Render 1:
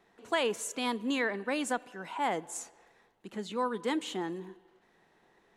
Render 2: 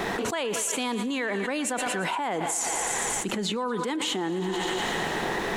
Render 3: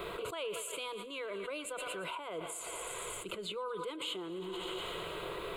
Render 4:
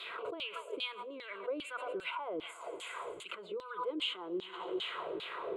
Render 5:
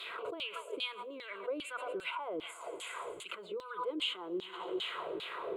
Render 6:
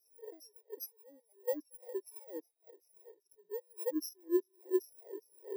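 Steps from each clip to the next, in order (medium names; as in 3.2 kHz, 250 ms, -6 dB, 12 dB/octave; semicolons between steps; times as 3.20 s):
thinning echo 115 ms, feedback 71%, high-pass 540 Hz, level -16 dB; level flattener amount 100%; trim -2.5 dB
static phaser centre 1.2 kHz, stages 8; trim -8 dB
LFO band-pass saw down 2.5 Hz 270–4000 Hz; trim +7.5 dB
treble shelf 8.6 kHz +8.5 dB
bit-reversed sample order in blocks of 32 samples; whistle 3.8 kHz -67 dBFS; spectral contrast expander 2.5:1; trim +2 dB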